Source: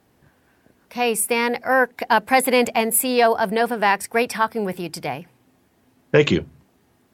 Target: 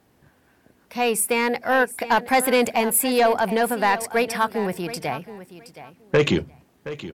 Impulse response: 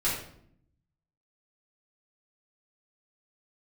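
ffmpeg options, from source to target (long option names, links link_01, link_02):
-af "asoftclip=type=tanh:threshold=-10dB,aecho=1:1:721|1442:0.188|0.0339"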